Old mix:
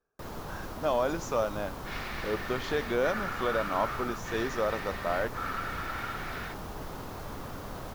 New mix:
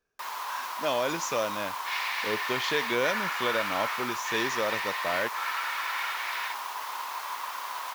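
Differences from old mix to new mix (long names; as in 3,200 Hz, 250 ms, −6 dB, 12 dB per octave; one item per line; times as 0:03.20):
first sound: add high-pass with resonance 1,000 Hz, resonance Q 7.1
master: add high shelf with overshoot 1,600 Hz +8 dB, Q 1.5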